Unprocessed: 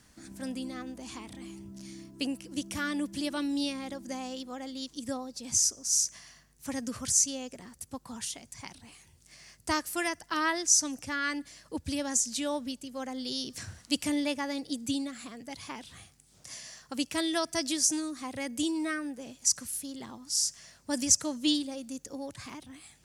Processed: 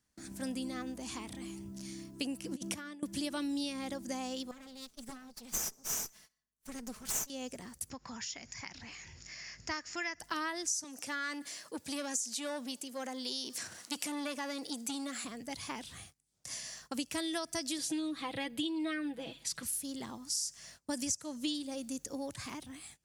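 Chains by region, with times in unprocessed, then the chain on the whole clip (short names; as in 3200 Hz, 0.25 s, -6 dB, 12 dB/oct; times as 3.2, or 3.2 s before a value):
2.44–3.03 tilt -1.5 dB/oct + negative-ratio compressor -37 dBFS, ratio -0.5 + HPF 260 Hz 6 dB/oct
4.51–7.3 minimum comb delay 4.6 ms + upward expander, over -39 dBFS
7.9–10.2 rippled Chebyshev low-pass 7100 Hz, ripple 9 dB + upward compressor, threshold -37 dBFS
10.84–15.25 transient shaper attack -1 dB, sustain +5 dB + HPF 310 Hz + core saturation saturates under 2500 Hz
17.78–19.63 resonant high shelf 4700 Hz -9 dB, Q 3 + comb 6.1 ms, depth 63%
whole clip: gate -55 dBFS, range -21 dB; high shelf 7000 Hz +4.5 dB; compressor 6:1, threshold -33 dBFS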